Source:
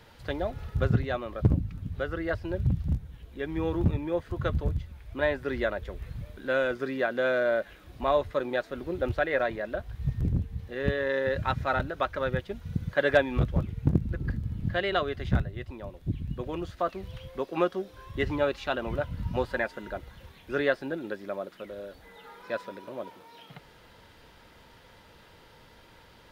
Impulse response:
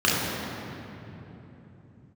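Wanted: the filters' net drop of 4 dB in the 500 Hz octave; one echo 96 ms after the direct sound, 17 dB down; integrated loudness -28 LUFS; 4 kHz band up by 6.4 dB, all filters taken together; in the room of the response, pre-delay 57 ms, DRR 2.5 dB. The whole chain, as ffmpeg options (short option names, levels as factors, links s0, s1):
-filter_complex "[0:a]equalizer=f=500:t=o:g=-5,equalizer=f=4000:t=o:g=8,aecho=1:1:96:0.141,asplit=2[s0][s1];[1:a]atrim=start_sample=2205,adelay=57[s2];[s1][s2]afir=irnorm=-1:irlink=0,volume=0.0841[s3];[s0][s3]amix=inputs=2:normalize=0,volume=0.944"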